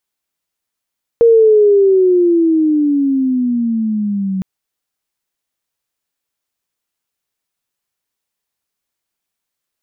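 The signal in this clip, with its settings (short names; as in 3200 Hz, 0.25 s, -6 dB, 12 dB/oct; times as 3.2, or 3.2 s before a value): gliding synth tone sine, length 3.21 s, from 470 Hz, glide -16 st, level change -11 dB, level -4.5 dB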